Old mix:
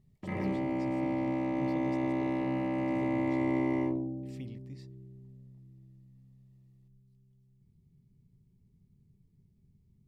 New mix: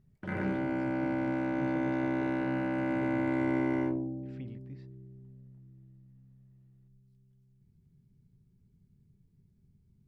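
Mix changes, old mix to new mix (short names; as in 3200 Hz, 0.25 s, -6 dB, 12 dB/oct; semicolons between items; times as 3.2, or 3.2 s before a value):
speech: add LPF 2500 Hz 12 dB/oct; master: remove Butterworth band-stop 1500 Hz, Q 3.5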